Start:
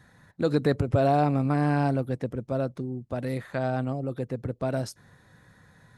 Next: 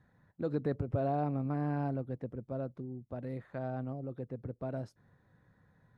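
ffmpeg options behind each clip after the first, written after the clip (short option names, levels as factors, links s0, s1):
-af "lowpass=f=1000:p=1,volume=0.355"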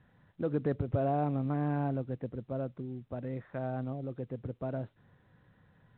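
-af "volume=1.26" -ar 8000 -c:a pcm_mulaw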